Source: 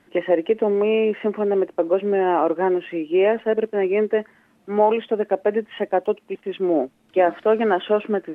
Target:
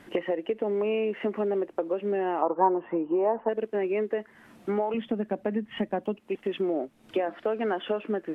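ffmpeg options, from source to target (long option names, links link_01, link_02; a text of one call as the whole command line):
ffmpeg -i in.wav -filter_complex "[0:a]asettb=1/sr,asplit=3[link_01][link_02][link_03];[link_01]atrim=end=4.944[link_04];[link_02]atrim=start=4.94:end=6.21,asetpts=PTS-STARTPTS,afade=type=in:duration=0.004:curve=qsin,afade=type=out:start_time=1.266:duration=0.004:curve=qsin,lowshelf=frequency=300:width_type=q:width=1.5:gain=9[link_05];[link_03]atrim=start=6.206[link_06];[link_04][link_05]acrossfade=duration=0.004:curve1=hsin:curve2=qsin[link_07];[link_07][link_06]acrossfade=duration=0.004:curve1=qsin:curve2=hsin,acompressor=threshold=-33dB:ratio=6,asettb=1/sr,asplit=3[link_08][link_09][link_10];[link_08]atrim=end=2.424[link_11];[link_09]atrim=start=2.42:end=3.49,asetpts=PTS-STARTPTS,afade=type=in:duration=0.004:curve=qsin,afade=type=out:start_time=1.066:duration=0.004:curve=qsin,lowpass=frequency=960:width_type=q:width=4.9[link_12];[link_10]atrim=start=3.486[link_13];[link_11][link_12]acrossfade=duration=0.004:curve1=hsin:curve2=qsin[link_14];[link_14][link_13]acrossfade=duration=0.004:curve1=qsin:curve2=hsin,volume=6.5dB" out.wav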